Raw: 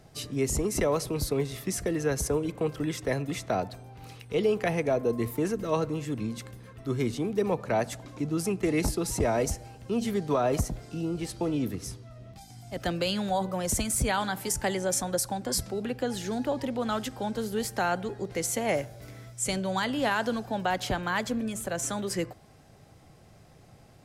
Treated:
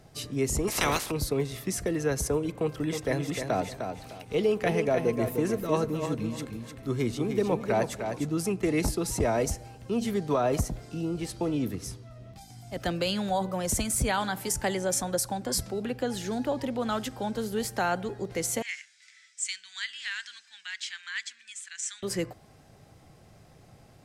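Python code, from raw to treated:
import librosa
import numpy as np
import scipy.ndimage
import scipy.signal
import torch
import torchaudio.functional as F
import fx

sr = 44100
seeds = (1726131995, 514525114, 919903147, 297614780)

y = fx.spec_clip(x, sr, under_db=28, at=(0.67, 1.1), fade=0.02)
y = fx.echo_feedback(y, sr, ms=304, feedback_pct=27, wet_db=-6.5, at=(2.62, 8.28))
y = fx.ellip_bandpass(y, sr, low_hz=1800.0, high_hz=8100.0, order=3, stop_db=50, at=(18.62, 22.03))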